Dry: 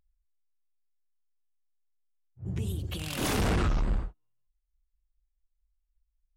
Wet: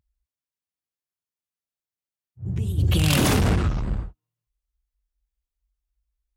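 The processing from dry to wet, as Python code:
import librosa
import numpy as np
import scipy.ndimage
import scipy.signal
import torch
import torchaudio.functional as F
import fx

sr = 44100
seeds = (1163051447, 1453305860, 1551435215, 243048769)

y = scipy.signal.sosfilt(scipy.signal.butter(2, 42.0, 'highpass', fs=sr, output='sos'), x)
y = fx.peak_eq(y, sr, hz=98.0, db=7.5, octaves=2.3)
y = fx.env_flatten(y, sr, amount_pct=100, at=(2.77, 3.54), fade=0.02)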